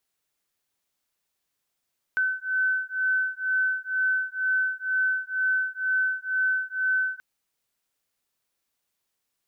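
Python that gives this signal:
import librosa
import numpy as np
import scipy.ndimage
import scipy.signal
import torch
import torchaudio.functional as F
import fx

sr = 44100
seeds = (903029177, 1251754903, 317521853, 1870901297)

y = fx.two_tone_beats(sr, length_s=5.03, hz=1520.0, beat_hz=2.1, level_db=-26.0)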